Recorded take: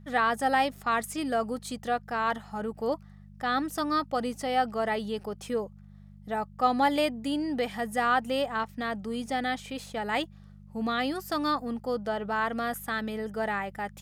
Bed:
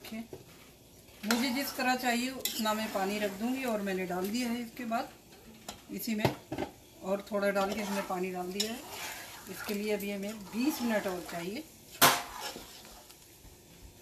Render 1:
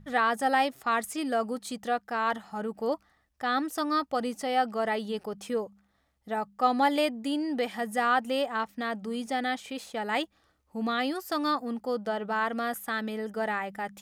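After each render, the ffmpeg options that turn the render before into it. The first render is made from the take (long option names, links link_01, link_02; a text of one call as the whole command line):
ffmpeg -i in.wav -af "bandreject=frequency=50:width_type=h:width=4,bandreject=frequency=100:width_type=h:width=4,bandreject=frequency=150:width_type=h:width=4,bandreject=frequency=200:width_type=h:width=4" out.wav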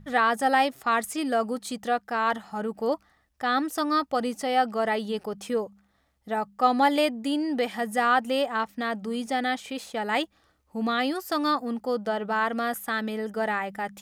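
ffmpeg -i in.wav -af "volume=3dB" out.wav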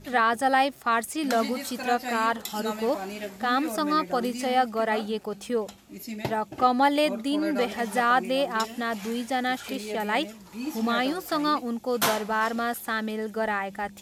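ffmpeg -i in.wav -i bed.wav -filter_complex "[1:a]volume=-2.5dB[link_01];[0:a][link_01]amix=inputs=2:normalize=0" out.wav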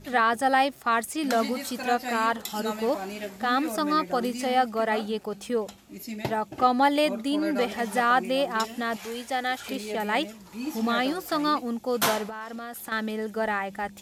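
ffmpeg -i in.wav -filter_complex "[0:a]asettb=1/sr,asplit=3[link_01][link_02][link_03];[link_01]atrim=end=8.964[link_04];[link_02]atrim=start=8.96:end=9.59,asetpts=PTS-STARTPTS,afade=type=in:duration=0.004:curve=qsin,afade=type=out:start_time=0.626:duration=0.004:curve=qsin,equalizer=frequency=190:width=1.5:gain=-13.5[link_05];[link_03]atrim=start=9.586[link_06];[link_04][link_05]acrossfade=duration=0.004:curve1=hsin:curve2=qsin[link_07];[link_07][link_06]acrossfade=duration=0.004:curve1=qsin:curve2=hsin,asettb=1/sr,asplit=3[link_08][link_09][link_10];[link_08]atrim=end=12.294[link_11];[link_09]atrim=start=12.29:end=12.92,asetpts=PTS-STARTPTS,afade=type=in:duration=0.004:curve=qsin,afade=type=out:start_time=0.626:duration=0.004:curve=qsin,acompressor=threshold=-33dB:ratio=16:attack=3.2:release=140:knee=1:detection=peak[link_12];[link_10]atrim=start=12.916[link_13];[link_11][link_12]acrossfade=duration=0.004:curve1=hsin:curve2=qsin[link_14];[link_14][link_13]acrossfade=duration=0.004:curve1=qsin:curve2=hsin" out.wav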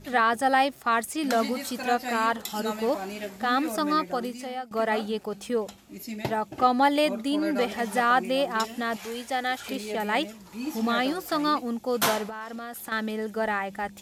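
ffmpeg -i in.wav -filter_complex "[0:a]asplit=2[link_01][link_02];[link_01]atrim=end=4.71,asetpts=PTS-STARTPTS,afade=type=out:start_time=3.92:duration=0.79:silence=0.11885[link_03];[link_02]atrim=start=4.71,asetpts=PTS-STARTPTS,afade=type=in:duration=0.004:curve=hsin:silence=0.11885[link_04];[link_03][link_04]concat=n=2:v=0:a=1" out.wav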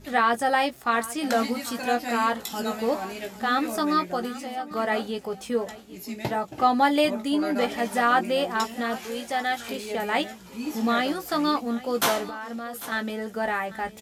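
ffmpeg -i in.wav -filter_complex "[0:a]asplit=2[link_01][link_02];[link_02]adelay=17,volume=-7dB[link_03];[link_01][link_03]amix=inputs=2:normalize=0,aecho=1:1:795:0.133" out.wav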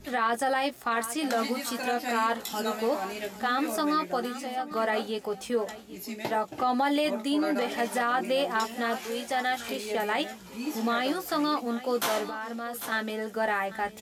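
ffmpeg -i in.wav -filter_complex "[0:a]acrossover=split=220[link_01][link_02];[link_01]acompressor=threshold=-49dB:ratio=6[link_03];[link_02]alimiter=limit=-18dB:level=0:latency=1:release=35[link_04];[link_03][link_04]amix=inputs=2:normalize=0" out.wav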